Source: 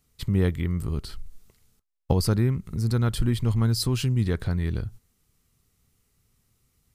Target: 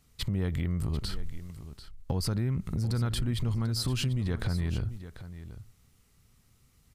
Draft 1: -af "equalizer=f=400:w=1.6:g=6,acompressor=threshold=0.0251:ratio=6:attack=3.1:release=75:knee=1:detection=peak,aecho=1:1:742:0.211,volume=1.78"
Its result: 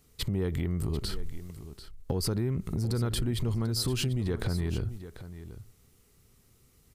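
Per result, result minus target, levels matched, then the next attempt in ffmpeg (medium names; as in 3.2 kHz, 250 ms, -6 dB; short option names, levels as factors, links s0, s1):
500 Hz band +5.0 dB; 8 kHz band +3.0 dB
-af "equalizer=f=400:w=1.6:g=-3,acompressor=threshold=0.0251:ratio=6:attack=3.1:release=75:knee=1:detection=peak,aecho=1:1:742:0.211,volume=1.78"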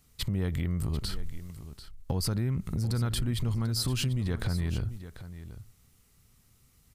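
8 kHz band +3.0 dB
-af "equalizer=f=400:w=1.6:g=-3,acompressor=threshold=0.0251:ratio=6:attack=3.1:release=75:knee=1:detection=peak,highshelf=f=8500:g=-6.5,aecho=1:1:742:0.211,volume=1.78"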